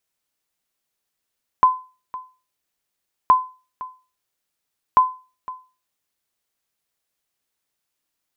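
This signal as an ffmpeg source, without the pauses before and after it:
-f lavfi -i "aevalsrc='0.531*(sin(2*PI*1020*mod(t,1.67))*exp(-6.91*mod(t,1.67)/0.33)+0.119*sin(2*PI*1020*max(mod(t,1.67)-0.51,0))*exp(-6.91*max(mod(t,1.67)-0.51,0)/0.33))':d=5.01:s=44100"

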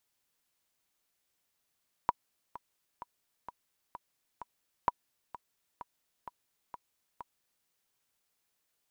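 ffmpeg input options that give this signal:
-f lavfi -i "aevalsrc='pow(10,(-12.5-17*gte(mod(t,6*60/129),60/129))/20)*sin(2*PI*971*mod(t,60/129))*exp(-6.91*mod(t,60/129)/0.03)':d=5.58:s=44100"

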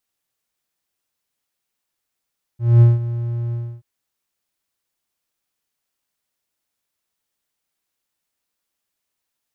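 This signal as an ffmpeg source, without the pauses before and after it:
-f lavfi -i "aevalsrc='0.668*(1-4*abs(mod(118*t+0.25,1)-0.5))':d=1.229:s=44100,afade=t=in:d=0.221,afade=t=out:st=0.221:d=0.176:silence=0.178,afade=t=out:st=0.94:d=0.289"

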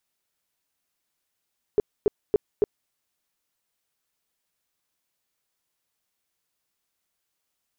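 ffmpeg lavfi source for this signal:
-f lavfi -i "aevalsrc='0.188*sin(2*PI*416*mod(t,0.28))*lt(mod(t,0.28),8/416)':d=1.12:s=44100"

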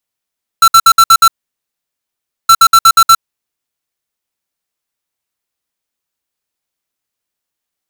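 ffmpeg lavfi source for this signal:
-f lavfi -i "aevalsrc='0.631*(2*lt(mod(1340*t,1),0.5)-1)*clip(min(mod(mod(t,1.87),0.12),0.06-mod(mod(t,1.87),0.12))/0.005,0,1)*lt(mod(t,1.87),0.72)':d=3.74:s=44100"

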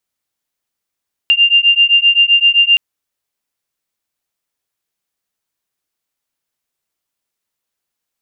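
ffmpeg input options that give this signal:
-f lavfi -i "aevalsrc='0.299*(sin(2*PI*2790*t)+sin(2*PI*2797.7*t))':d=1.47:s=44100"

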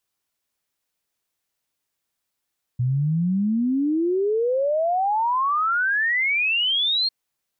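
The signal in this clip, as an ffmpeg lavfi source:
-f lavfi -i "aevalsrc='0.119*clip(min(t,4.3-t)/0.01,0,1)*sin(2*PI*120*4.3/log(4300/120)*(exp(log(4300/120)*t/4.3)-1))':d=4.3:s=44100"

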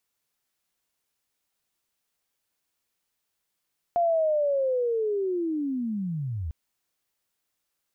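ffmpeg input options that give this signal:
-f lavfi -i "aevalsrc='pow(10,(-19.5-9*t/2.55)/20)*sin(2*PI*(700*t-629*t*t/(2*2.55)))':d=2.55:s=44100"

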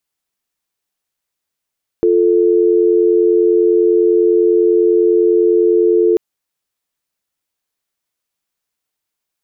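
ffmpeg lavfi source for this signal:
-f lavfi -i "aevalsrc='0.266*(sin(2*PI*350*t)+sin(2*PI*440*t))':d=4.14:s=44100"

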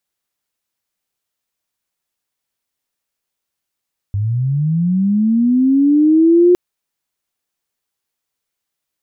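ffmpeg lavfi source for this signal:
-f lavfi -i "aevalsrc='pow(10,(-15+9*t/2.41)/20)*sin(2*PI*(97*t+263*t*t/(2*2.41)))':d=2.41:s=44100"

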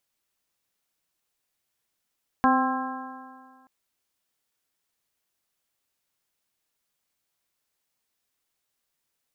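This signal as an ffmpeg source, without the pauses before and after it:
-f lavfi -i "aevalsrc='0.1*pow(10,-3*t/1.84)*sin(2*PI*258.31*t)+0.0282*pow(10,-3*t/1.84)*sin(2*PI*518.47*t)+0.0944*pow(10,-3*t/1.84)*sin(2*PI*782.31*t)+0.1*pow(10,-3*t/1.84)*sin(2*PI*1051.63*t)+0.0422*pow(10,-3*t/1.84)*sin(2*PI*1328.14*t)+0.0422*pow(10,-3*t/1.84)*sin(2*PI*1613.49*t)':d=1.23:s=44100"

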